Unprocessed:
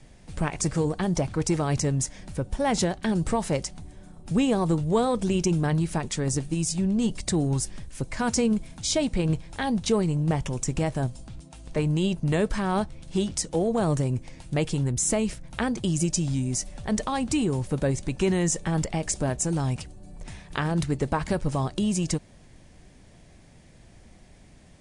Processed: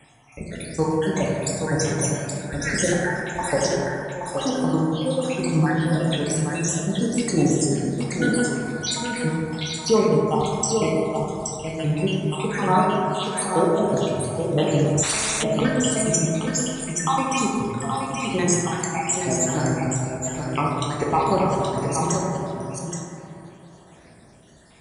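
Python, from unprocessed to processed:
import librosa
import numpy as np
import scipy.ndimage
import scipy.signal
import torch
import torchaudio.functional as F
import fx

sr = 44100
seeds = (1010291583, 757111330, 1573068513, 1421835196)

p1 = fx.spec_dropout(x, sr, seeds[0], share_pct=74)
p2 = scipy.signal.sosfilt(scipy.signal.butter(2, 68.0, 'highpass', fs=sr, output='sos'), p1)
p3 = fx.low_shelf(p2, sr, hz=310.0, db=-10.0)
p4 = p3 + fx.echo_single(p3, sr, ms=824, db=-6.0, dry=0)
p5 = fx.rev_plate(p4, sr, seeds[1], rt60_s=2.9, hf_ratio=0.25, predelay_ms=0, drr_db=-4.5)
p6 = fx.spectral_comp(p5, sr, ratio=10.0, at=(15.02, 15.42), fade=0.02)
y = F.gain(torch.from_numpy(p6), 7.0).numpy()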